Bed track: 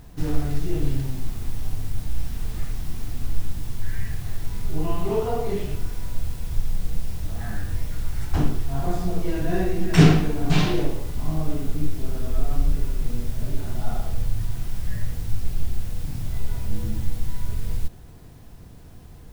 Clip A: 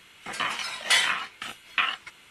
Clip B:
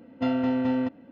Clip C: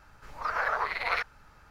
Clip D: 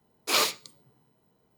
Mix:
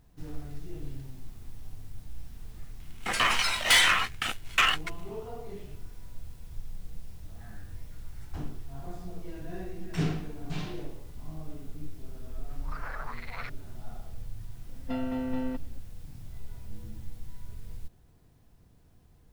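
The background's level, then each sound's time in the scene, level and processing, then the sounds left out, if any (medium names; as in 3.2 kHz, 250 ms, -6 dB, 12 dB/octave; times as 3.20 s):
bed track -15.5 dB
2.80 s: add A -6 dB + waveshaping leveller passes 3
12.27 s: add C -12 dB
14.68 s: add B -7.5 dB
not used: D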